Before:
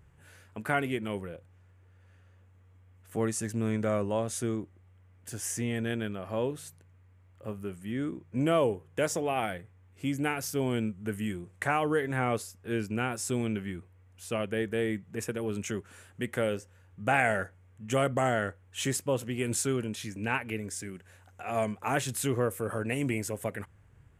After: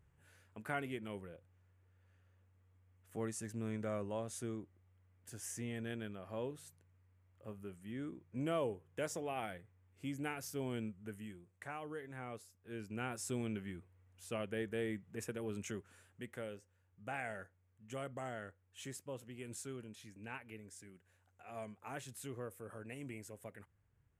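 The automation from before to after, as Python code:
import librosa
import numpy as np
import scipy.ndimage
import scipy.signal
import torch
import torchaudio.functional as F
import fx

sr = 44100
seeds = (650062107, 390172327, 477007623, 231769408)

y = fx.gain(x, sr, db=fx.line((10.91, -11.0), (11.42, -18.0), (12.58, -18.0), (13.11, -9.0), (15.68, -9.0), (16.55, -17.0)))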